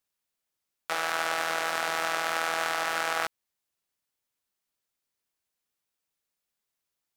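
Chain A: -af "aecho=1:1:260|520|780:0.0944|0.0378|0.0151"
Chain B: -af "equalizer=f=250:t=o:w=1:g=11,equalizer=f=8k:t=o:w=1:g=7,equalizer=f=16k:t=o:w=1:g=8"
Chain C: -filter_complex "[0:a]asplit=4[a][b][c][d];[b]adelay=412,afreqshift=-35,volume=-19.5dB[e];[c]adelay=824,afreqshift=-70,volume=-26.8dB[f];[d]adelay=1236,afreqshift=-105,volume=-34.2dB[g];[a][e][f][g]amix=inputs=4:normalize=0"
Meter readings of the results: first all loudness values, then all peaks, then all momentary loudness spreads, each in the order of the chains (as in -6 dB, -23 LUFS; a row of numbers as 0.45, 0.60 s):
-29.0, -26.5, -28.5 LUFS; -11.0, -5.5, -11.0 dBFS; 4, 4, 8 LU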